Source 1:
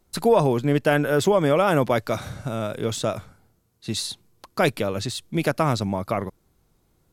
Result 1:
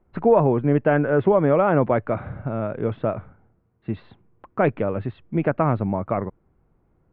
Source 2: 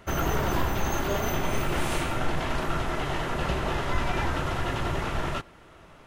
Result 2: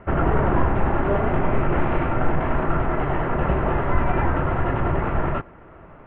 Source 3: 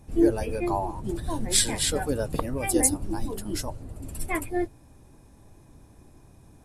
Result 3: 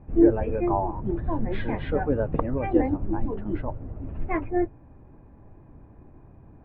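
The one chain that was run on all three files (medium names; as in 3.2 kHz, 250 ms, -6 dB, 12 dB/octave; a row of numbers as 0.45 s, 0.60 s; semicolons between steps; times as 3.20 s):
Bessel low-pass 1.4 kHz, order 8; peak normalisation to -6 dBFS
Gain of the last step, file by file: +2.0 dB, +7.5 dB, +3.0 dB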